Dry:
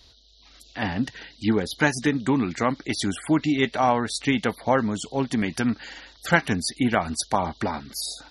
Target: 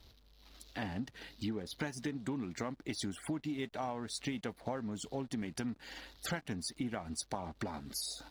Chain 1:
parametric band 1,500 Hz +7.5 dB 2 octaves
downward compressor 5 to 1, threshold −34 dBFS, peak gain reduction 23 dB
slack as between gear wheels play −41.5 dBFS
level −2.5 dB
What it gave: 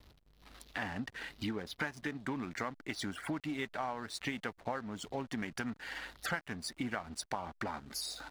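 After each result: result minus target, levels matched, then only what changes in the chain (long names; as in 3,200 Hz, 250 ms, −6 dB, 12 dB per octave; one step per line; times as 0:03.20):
2,000 Hz band +6.0 dB; slack as between gear wheels: distortion +7 dB
change: parametric band 1,500 Hz −4.5 dB 2 octaves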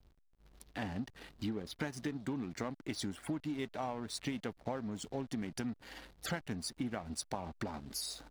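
slack as between gear wheels: distortion +7 dB
change: slack as between gear wheels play −49.5 dBFS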